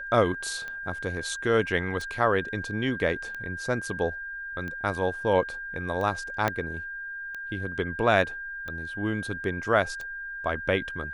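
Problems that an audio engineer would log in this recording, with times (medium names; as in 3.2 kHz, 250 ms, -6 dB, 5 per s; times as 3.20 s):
tick 45 rpm -24 dBFS
whine 1.6 kHz -34 dBFS
6.48 s: pop -11 dBFS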